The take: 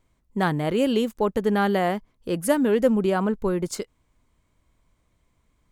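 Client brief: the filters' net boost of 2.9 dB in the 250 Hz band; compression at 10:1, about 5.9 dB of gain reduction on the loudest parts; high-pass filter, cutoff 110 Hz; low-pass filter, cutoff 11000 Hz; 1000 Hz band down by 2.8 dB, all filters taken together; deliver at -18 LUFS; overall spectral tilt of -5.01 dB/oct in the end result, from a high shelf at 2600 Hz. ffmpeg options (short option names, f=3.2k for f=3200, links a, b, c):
-af "highpass=110,lowpass=11k,equalizer=f=250:t=o:g=4,equalizer=f=1k:t=o:g=-5.5,highshelf=f=2.6k:g=8,acompressor=threshold=-20dB:ratio=10,volume=8dB"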